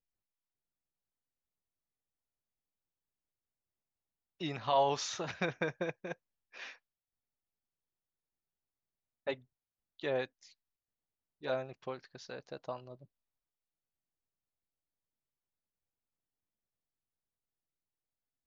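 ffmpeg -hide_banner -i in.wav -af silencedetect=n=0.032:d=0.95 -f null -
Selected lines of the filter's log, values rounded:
silence_start: 0.00
silence_end: 4.43 | silence_duration: 4.43
silence_start: 6.12
silence_end: 9.28 | silence_duration: 3.16
silence_start: 10.24
silence_end: 11.47 | silence_duration: 1.23
silence_start: 12.72
silence_end: 18.47 | silence_duration: 5.74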